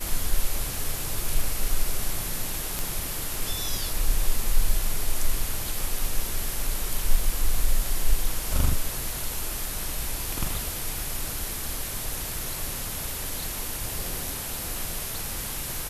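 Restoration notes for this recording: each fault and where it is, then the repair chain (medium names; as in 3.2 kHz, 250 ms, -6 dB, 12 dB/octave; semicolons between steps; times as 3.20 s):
2.79 s: pop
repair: de-click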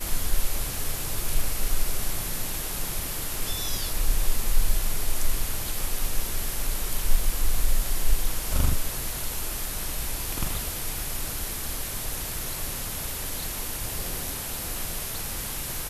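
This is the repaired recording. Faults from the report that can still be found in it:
nothing left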